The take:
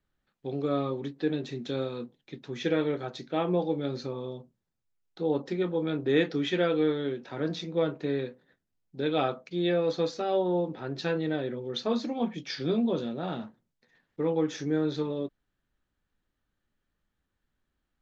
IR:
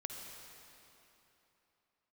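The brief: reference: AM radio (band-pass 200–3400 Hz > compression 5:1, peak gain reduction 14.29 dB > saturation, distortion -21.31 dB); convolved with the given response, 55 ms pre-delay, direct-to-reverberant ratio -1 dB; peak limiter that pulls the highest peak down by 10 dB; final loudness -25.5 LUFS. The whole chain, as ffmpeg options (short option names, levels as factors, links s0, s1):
-filter_complex "[0:a]alimiter=limit=0.075:level=0:latency=1,asplit=2[s0][s1];[1:a]atrim=start_sample=2205,adelay=55[s2];[s1][s2]afir=irnorm=-1:irlink=0,volume=1.26[s3];[s0][s3]amix=inputs=2:normalize=0,highpass=200,lowpass=3400,acompressor=threshold=0.0126:ratio=5,asoftclip=threshold=0.0251,volume=6.68"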